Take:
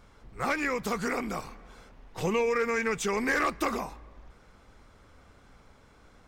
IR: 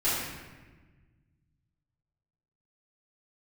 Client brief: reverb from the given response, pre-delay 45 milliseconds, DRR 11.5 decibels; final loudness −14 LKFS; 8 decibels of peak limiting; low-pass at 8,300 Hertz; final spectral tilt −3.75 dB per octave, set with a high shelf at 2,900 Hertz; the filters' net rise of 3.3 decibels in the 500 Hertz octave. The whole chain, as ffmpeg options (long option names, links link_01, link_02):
-filter_complex "[0:a]lowpass=8300,equalizer=frequency=500:width_type=o:gain=3.5,highshelf=frequency=2900:gain=6.5,alimiter=limit=-22.5dB:level=0:latency=1,asplit=2[link_01][link_02];[1:a]atrim=start_sample=2205,adelay=45[link_03];[link_02][link_03]afir=irnorm=-1:irlink=0,volume=-23dB[link_04];[link_01][link_04]amix=inputs=2:normalize=0,volume=17.5dB"